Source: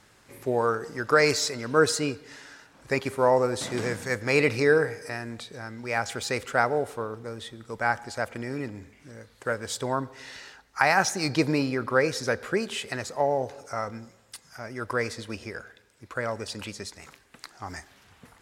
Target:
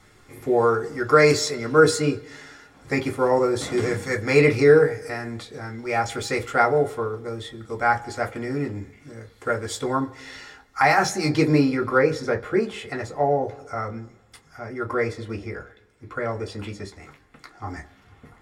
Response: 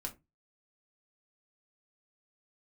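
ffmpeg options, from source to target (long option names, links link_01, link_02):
-filter_complex "[0:a]asetnsamples=nb_out_samples=441:pad=0,asendcmd='11.98 highshelf g -11.5',highshelf=frequency=3200:gain=-2[link_01];[1:a]atrim=start_sample=2205,asetrate=61740,aresample=44100[link_02];[link_01][link_02]afir=irnorm=-1:irlink=0,volume=7.5dB"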